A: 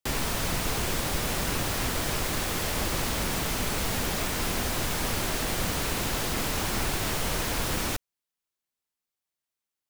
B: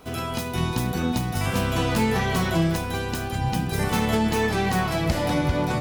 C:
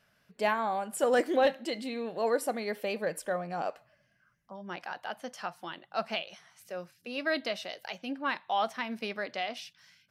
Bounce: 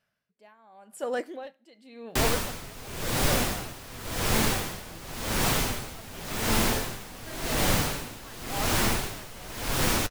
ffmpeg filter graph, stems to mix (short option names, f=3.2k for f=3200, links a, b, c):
-filter_complex "[0:a]flanger=delay=7.1:depth=2.5:regen=-51:speed=1.7:shape=triangular,adelay=2100,volume=2.5dB[a];[1:a]adelay=2350,volume=-16dB[b];[2:a]volume=-8.5dB[c];[a][b][c]amix=inputs=3:normalize=0,dynaudnorm=f=100:g=21:m=6.5dB,aeval=exprs='val(0)*pow(10,-20*(0.5-0.5*cos(2*PI*0.91*n/s))/20)':c=same"